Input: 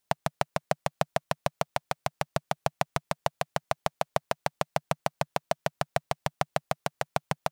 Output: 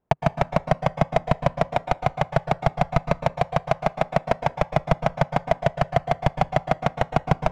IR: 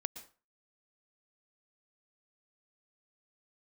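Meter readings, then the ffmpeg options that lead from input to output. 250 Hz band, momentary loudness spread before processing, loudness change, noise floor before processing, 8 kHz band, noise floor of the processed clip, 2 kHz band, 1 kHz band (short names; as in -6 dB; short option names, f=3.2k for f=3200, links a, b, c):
+11.5 dB, 3 LU, +8.0 dB, -79 dBFS, n/a, -50 dBFS, +5.5 dB, +7.5 dB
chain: -filter_complex "[0:a]asplit=2[a][b];[b]highpass=f=720:p=1,volume=26dB,asoftclip=type=tanh:threshold=-5dB[c];[a][c]amix=inputs=2:normalize=0,lowpass=f=7.3k:p=1,volume=-6dB,adynamicsmooth=sensitivity=4:basefreq=620,aemphasis=mode=reproduction:type=riaa[d];[1:a]atrim=start_sample=2205[e];[d][e]afir=irnorm=-1:irlink=0"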